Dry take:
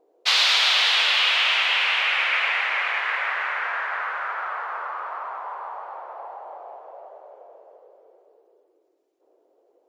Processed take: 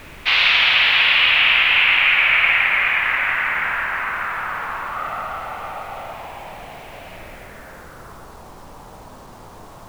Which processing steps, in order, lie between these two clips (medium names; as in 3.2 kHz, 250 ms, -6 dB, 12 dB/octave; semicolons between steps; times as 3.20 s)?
4.95–6.13 s: comb 1.5 ms, depth 89%; added noise pink -41 dBFS; on a send: flutter echo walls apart 9.2 m, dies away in 0.47 s; on the sum: low-pass sweep 2.5 kHz -> 1 kHz, 7.14–8.43 s; bit crusher 8-bit